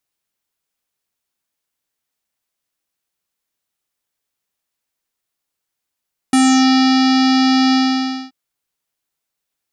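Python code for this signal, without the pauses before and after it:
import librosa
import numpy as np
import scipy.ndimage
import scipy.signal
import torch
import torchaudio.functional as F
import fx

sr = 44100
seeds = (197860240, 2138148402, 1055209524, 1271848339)

y = fx.sub_voice(sr, note=60, wave='square', cutoff_hz=5000.0, q=3.6, env_oct=1.0, env_s=0.33, attack_ms=3.1, decay_s=0.66, sustain_db=-2.0, release_s=0.58, note_s=1.4, slope=24)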